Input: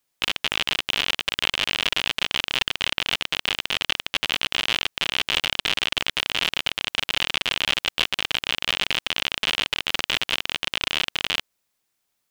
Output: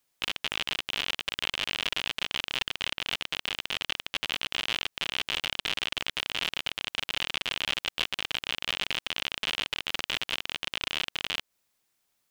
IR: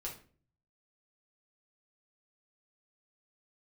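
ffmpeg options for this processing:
-af "alimiter=limit=-13dB:level=0:latency=1:release=168"

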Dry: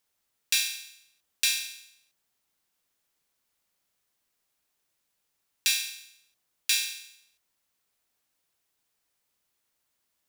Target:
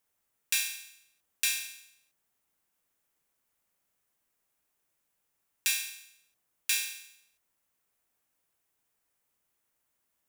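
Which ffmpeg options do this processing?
ffmpeg -i in.wav -af "equalizer=frequency=4300:width_type=o:width=1.1:gain=-7.5" out.wav

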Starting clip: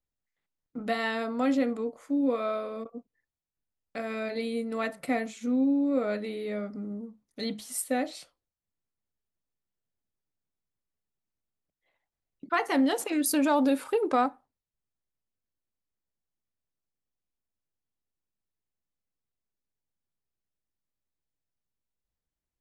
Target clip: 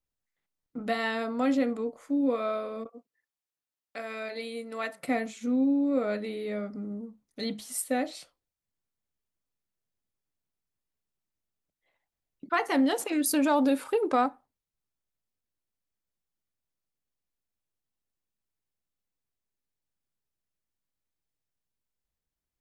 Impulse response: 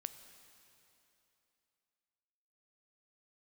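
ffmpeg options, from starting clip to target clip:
-filter_complex "[0:a]asettb=1/sr,asplit=3[link_01][link_02][link_03];[link_01]atrim=end=2.894[link_04];[link_02]atrim=start=2.89:end=5.03,asetpts=PTS-STARTPTS,afade=type=in:duration=0.004:curve=qsin,afade=type=out:start_time=2.136:duration=0.004:curve=qsin,highpass=frequency=620:poles=1[link_05];[link_03]atrim=start=5.026[link_06];[link_04][link_05]acrossfade=duration=0.004:curve1=hsin:curve2=qsin[link_07];[link_07][link_06]acrossfade=duration=0.004:curve1=qsin:curve2=hsin"

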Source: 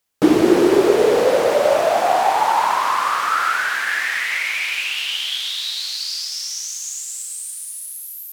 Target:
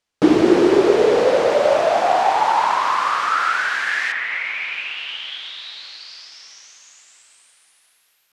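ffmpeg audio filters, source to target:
ffmpeg -i in.wav -af "asetnsamples=nb_out_samples=441:pad=0,asendcmd='4.12 lowpass f 2300',lowpass=6100" out.wav

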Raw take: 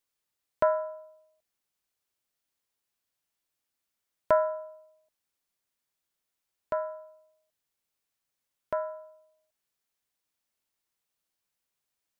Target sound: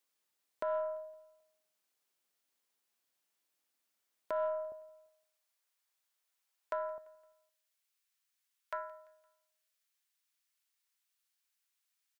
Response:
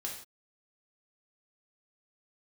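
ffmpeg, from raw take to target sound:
-af "asetnsamples=nb_out_samples=441:pad=0,asendcmd='4.72 highpass f 690;6.98 highpass f 1400',highpass=200,acompressor=threshold=-32dB:ratio=2,alimiter=level_in=1.5dB:limit=-24dB:level=0:latency=1:release=139,volume=-1.5dB,aeval=exprs='0.0562*(cos(1*acos(clip(val(0)/0.0562,-1,1)))-cos(1*PI/2))+0.000501*(cos(5*acos(clip(val(0)/0.0562,-1,1)))-cos(5*PI/2))+0.000708*(cos(6*acos(clip(val(0)/0.0562,-1,1)))-cos(6*PI/2))':channel_layout=same,aecho=1:1:171|342|513:0.0668|0.0321|0.0154,volume=1dB"

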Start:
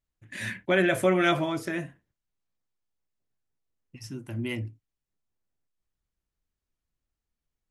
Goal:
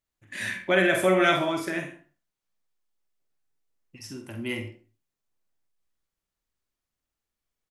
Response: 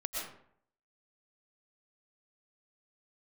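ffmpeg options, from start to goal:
-filter_complex "[0:a]lowshelf=frequency=200:gain=-10,asplit=2[link_01][link_02];[link_02]adelay=48,volume=-6dB[link_03];[link_01][link_03]amix=inputs=2:normalize=0,asplit=2[link_04][link_05];[1:a]atrim=start_sample=2205,asetrate=79380,aresample=44100[link_06];[link_05][link_06]afir=irnorm=-1:irlink=0,volume=-4dB[link_07];[link_04][link_07]amix=inputs=2:normalize=0"

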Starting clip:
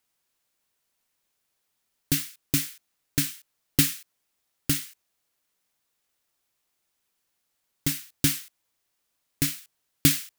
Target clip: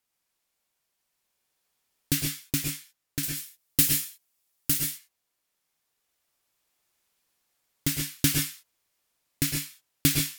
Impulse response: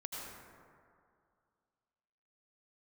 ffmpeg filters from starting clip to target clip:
-filter_complex "[0:a]asettb=1/sr,asplit=3[link_01][link_02][link_03];[link_01]atrim=end=3.234[link_04];[link_02]atrim=start=3.23:end=4.84,asetpts=PTS-STARTPTS,afade=type=in:duration=0.004:curve=qsin,afade=type=out:start_time=1.606:duration=0.004:curve=qsin,highshelf=frequency=5800:gain=10[link_05];[link_03]atrim=start=4.836[link_06];[link_04][link_05]acrossfade=duration=0.004:curve1=hsin:curve2=qsin[link_07];[link_07][link_06]acrossfade=duration=0.004:curve1=qsin:curve2=hsin,dynaudnorm=framelen=990:gausssize=3:maxgain=6dB[link_08];[1:a]atrim=start_sample=2205,afade=type=out:start_time=0.16:duration=0.01,atrim=end_sample=7497,asetrate=33075,aresample=44100[link_09];[link_08][link_09]afir=irnorm=-1:irlink=0"

